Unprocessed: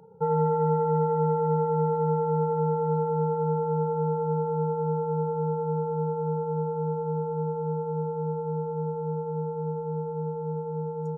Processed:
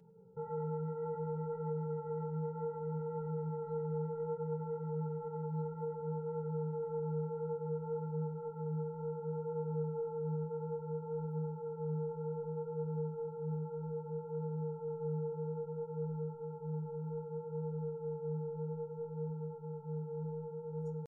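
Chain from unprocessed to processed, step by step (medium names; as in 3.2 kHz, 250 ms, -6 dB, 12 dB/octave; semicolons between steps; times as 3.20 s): peaking EQ 810 Hz -11.5 dB 1.2 oct; hum notches 50/100 Hz; peak limiter -25 dBFS, peak gain reduction 6.5 dB; feedback comb 860 Hz, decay 0.19 s, harmonics all, mix 50%; tempo 0.53×; flange 0.62 Hz, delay 5 ms, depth 8.1 ms, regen -30%; filtered feedback delay 104 ms, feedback 70%, low-pass 860 Hz, level -5 dB; trim +2.5 dB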